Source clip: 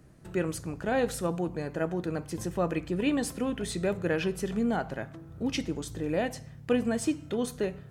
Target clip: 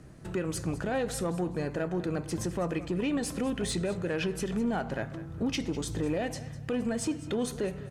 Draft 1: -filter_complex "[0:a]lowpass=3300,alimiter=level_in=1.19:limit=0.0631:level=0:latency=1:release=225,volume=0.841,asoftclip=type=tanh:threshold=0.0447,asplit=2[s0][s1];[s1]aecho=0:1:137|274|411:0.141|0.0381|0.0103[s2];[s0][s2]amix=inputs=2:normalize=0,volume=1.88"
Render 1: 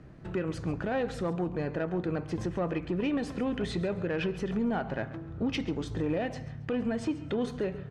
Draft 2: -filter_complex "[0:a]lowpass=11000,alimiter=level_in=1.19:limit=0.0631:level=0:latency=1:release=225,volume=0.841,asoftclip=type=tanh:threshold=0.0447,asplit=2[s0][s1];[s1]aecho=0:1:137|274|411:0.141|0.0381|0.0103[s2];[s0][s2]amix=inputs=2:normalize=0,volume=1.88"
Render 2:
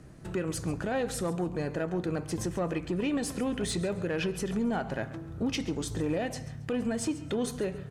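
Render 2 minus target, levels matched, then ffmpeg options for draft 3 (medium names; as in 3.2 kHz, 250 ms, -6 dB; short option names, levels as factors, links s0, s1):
echo 64 ms early
-filter_complex "[0:a]lowpass=11000,alimiter=level_in=1.19:limit=0.0631:level=0:latency=1:release=225,volume=0.841,asoftclip=type=tanh:threshold=0.0447,asplit=2[s0][s1];[s1]aecho=0:1:201|402|603:0.141|0.0381|0.0103[s2];[s0][s2]amix=inputs=2:normalize=0,volume=1.88"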